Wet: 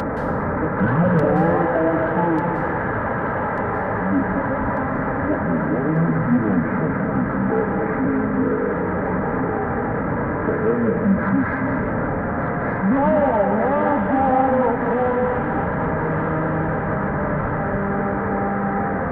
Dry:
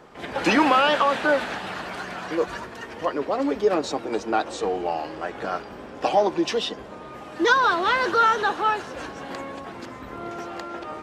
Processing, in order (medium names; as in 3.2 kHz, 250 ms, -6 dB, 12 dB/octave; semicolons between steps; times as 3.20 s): one-bit delta coder 16 kbps, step -22 dBFS; dynamic bell 1.5 kHz, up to -3 dB, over -31 dBFS, Q 1.2; in parallel at 0 dB: peak limiter -19 dBFS, peak gain reduction 10 dB; on the sum: comb of notches 630 Hz; saturation -9.5 dBFS, distortion -23 dB; feedback echo behind a high-pass 688 ms, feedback 59%, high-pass 2.4 kHz, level -3 dB; on a send at -3 dB: reverberation RT60 0.55 s, pre-delay 96 ms; on the sum: speed mistake 78 rpm record played at 45 rpm